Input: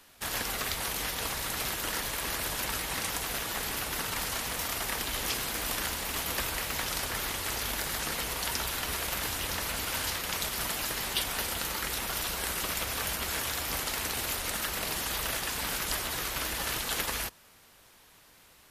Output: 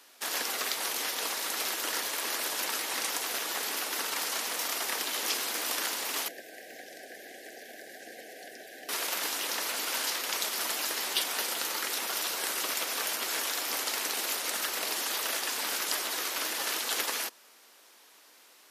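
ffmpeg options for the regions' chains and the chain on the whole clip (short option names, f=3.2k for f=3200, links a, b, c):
-filter_complex "[0:a]asettb=1/sr,asplit=3[a][b][c];[a]atrim=end=6.284[d];[b]atrim=start=6.28:end=8.89,asetpts=PTS-STARTPTS,afade=t=in:d=0.004:c=qsin,afade=t=out:st=2.606:d=0.004:c=qsin,asuperstop=centerf=1100:order=20:qfactor=1.4,highshelf=f=1.9k:t=q:w=1.5:g=-6,acrossover=split=680|2000[e][f][g];[e]acompressor=threshold=-46dB:ratio=4[h];[f]acompressor=threshold=-49dB:ratio=4[i];[g]acompressor=threshold=-55dB:ratio=4[j];[h][i][j]amix=inputs=3:normalize=0[k];[c]atrim=start=8.886[l];[d][k]acrossfade=d=0.004:c1=hsin:c2=qsin[m];[m][l]acrossfade=d=0.004:c1=qsin:c2=hsin,highpass=f=280:w=0.5412,highpass=f=280:w=1.3066,equalizer=f=5.5k:w=1.4:g=3.5"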